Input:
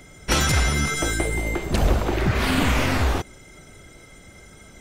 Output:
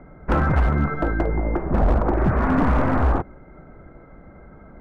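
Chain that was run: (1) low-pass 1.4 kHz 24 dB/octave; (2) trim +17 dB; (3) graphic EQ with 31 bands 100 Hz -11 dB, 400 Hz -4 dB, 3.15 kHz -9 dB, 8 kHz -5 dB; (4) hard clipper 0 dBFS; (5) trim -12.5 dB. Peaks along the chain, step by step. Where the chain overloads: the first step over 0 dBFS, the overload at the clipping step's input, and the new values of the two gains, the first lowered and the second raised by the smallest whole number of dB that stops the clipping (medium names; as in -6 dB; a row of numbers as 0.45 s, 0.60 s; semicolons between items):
-7.0 dBFS, +10.0 dBFS, +8.0 dBFS, 0.0 dBFS, -12.5 dBFS; step 2, 8.0 dB; step 2 +9 dB, step 5 -4.5 dB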